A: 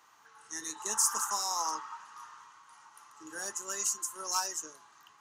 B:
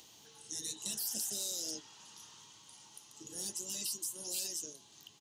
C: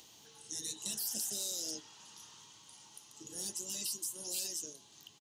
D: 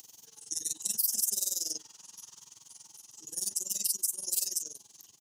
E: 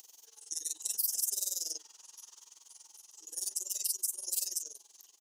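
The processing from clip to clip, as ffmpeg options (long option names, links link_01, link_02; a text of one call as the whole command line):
ffmpeg -i in.wav -filter_complex "[0:a]afftfilt=real='re*lt(hypot(re,im),0.0316)':imag='im*lt(hypot(re,im),0.0316)':win_size=1024:overlap=0.75,firequalizer=gain_entry='entry(180,0);entry(330,-4);entry(560,-8);entry(1200,-29);entry(3200,-1);entry(5700,-4)':delay=0.05:min_phase=1,asplit=2[link_01][link_02];[link_02]acompressor=mode=upward:threshold=-51dB:ratio=2.5,volume=-1.5dB[link_03];[link_01][link_03]amix=inputs=2:normalize=0,volume=2dB" out.wav
ffmpeg -i in.wav -filter_complex "[0:a]asplit=2[link_01][link_02];[link_02]adelay=99.13,volume=-27dB,highshelf=frequency=4000:gain=-2.23[link_03];[link_01][link_03]amix=inputs=2:normalize=0" out.wav
ffmpeg -i in.wav -filter_complex "[0:a]tremolo=f=21:d=0.889,acrossover=split=130[link_01][link_02];[link_02]aexciter=amount=4:drive=4.2:freq=5100[link_03];[link_01][link_03]amix=inputs=2:normalize=0" out.wav
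ffmpeg -i in.wav -af "highpass=frequency=370:width=0.5412,highpass=frequency=370:width=1.3066,volume=-3dB" out.wav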